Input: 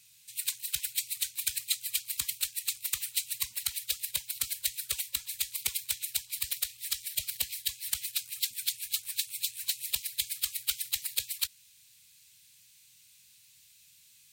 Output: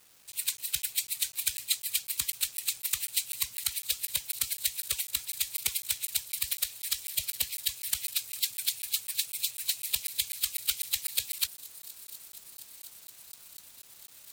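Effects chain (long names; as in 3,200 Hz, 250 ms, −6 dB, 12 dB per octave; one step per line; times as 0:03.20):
delay with a high-pass on its return 717 ms, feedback 77%, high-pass 5,300 Hz, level −16.5 dB
bit reduction 9 bits
regular buffer underruns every 0.25 s, samples 512, zero, from 0:00.32
level +1.5 dB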